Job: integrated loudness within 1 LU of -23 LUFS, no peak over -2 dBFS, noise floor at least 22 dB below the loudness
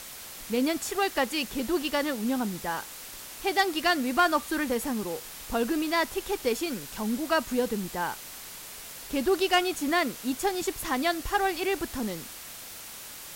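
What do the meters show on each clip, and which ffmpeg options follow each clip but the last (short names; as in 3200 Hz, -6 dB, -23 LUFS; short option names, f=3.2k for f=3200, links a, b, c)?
noise floor -43 dBFS; noise floor target -50 dBFS; loudness -28.0 LUFS; peak -12.5 dBFS; loudness target -23.0 LUFS
-> -af "afftdn=nr=7:nf=-43"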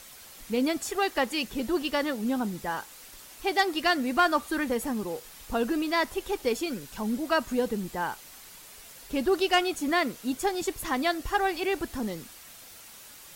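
noise floor -49 dBFS; noise floor target -51 dBFS
-> -af "afftdn=nr=6:nf=-49"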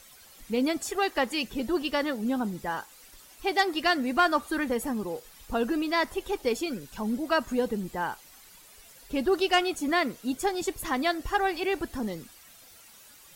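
noise floor -53 dBFS; loudness -28.5 LUFS; peak -13.0 dBFS; loudness target -23.0 LUFS
-> -af "volume=5.5dB"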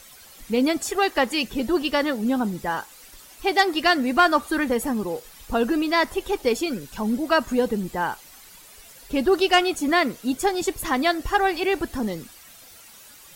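loudness -23.0 LUFS; peak -7.5 dBFS; noise floor -48 dBFS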